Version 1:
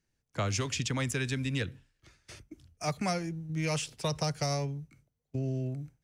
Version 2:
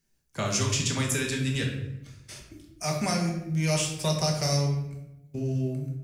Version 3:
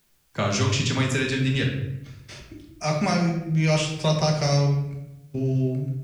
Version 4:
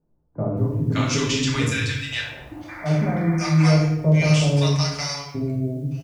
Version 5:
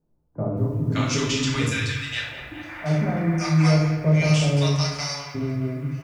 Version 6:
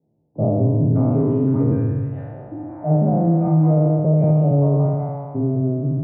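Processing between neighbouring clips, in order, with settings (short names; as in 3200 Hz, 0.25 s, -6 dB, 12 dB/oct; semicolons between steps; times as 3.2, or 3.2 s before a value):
high shelf 6700 Hz +12 dB; shoebox room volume 270 m³, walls mixed, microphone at 1.2 m
LPF 4500 Hz 12 dB/oct; requantised 12-bit, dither triangular; gain +5 dB
painted sound noise, 2.11–3.18, 510–2400 Hz -39 dBFS; bands offset in time lows, highs 0.57 s, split 790 Hz; FDN reverb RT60 0.41 s, low-frequency decay 1.3×, high-frequency decay 0.9×, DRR 1.5 dB
narrowing echo 0.208 s, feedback 82%, band-pass 1600 Hz, level -11 dB; gain -1.5 dB
spectral trails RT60 1.55 s; elliptic band-pass 100–750 Hz, stop band 70 dB; maximiser +13.5 dB; gain -8 dB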